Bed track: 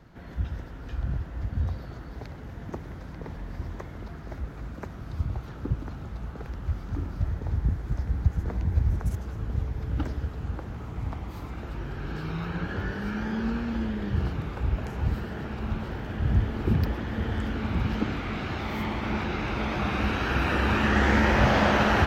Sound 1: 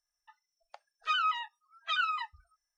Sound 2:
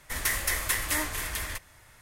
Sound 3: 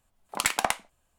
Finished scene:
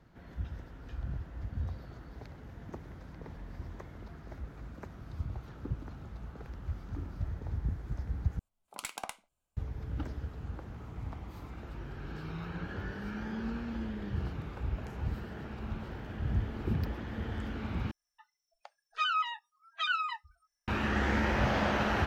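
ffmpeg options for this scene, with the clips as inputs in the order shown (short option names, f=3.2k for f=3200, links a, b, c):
-filter_complex "[0:a]volume=-8dB[a];[3:a]bandreject=f=1.8k:w=5.5[b];[a]asplit=3[c][d][e];[c]atrim=end=8.394[f];[b]atrim=end=1.18,asetpts=PTS-STARTPTS,volume=-14.5dB[g];[d]atrim=start=9.566:end=17.914[h];[1:a]atrim=end=2.77,asetpts=PTS-STARTPTS,volume=-1dB[i];[e]atrim=start=20.676[j];[f][g]acrossfade=d=0.004:c1=hsin:c2=hsin[k];[k][h]acrossfade=d=0.004:c1=hsin:c2=hsin[l];[l][i]acrossfade=d=0.004:c1=hsin:c2=hsin[m];[m][j]acrossfade=d=0.004:c1=hsin:c2=hsin"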